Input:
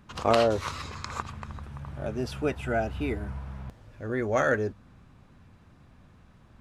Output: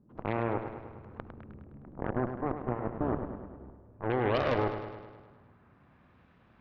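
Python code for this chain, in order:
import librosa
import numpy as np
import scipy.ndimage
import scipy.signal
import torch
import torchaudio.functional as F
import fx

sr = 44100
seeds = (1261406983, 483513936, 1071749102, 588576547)

p1 = fx.highpass(x, sr, hz=150.0, slope=6)
p2 = fx.hum_notches(p1, sr, base_hz=50, count=4)
p3 = fx.over_compress(p2, sr, threshold_db=-32.0, ratio=-0.5)
p4 = p2 + F.gain(torch.from_numpy(p3), 1.5).numpy()
p5 = fx.filter_sweep_lowpass(p4, sr, from_hz=370.0, to_hz=2700.0, start_s=3.56, end_s=6.19, q=1.1)
p6 = fx.cheby_harmonics(p5, sr, harmonics=(4, 7), levels_db=(-10, -13), full_scale_db=-13.5)
p7 = p6 + fx.echo_bbd(p6, sr, ms=103, stages=4096, feedback_pct=61, wet_db=-8.5, dry=0)
y = F.gain(torch.from_numpy(p7), -8.0).numpy()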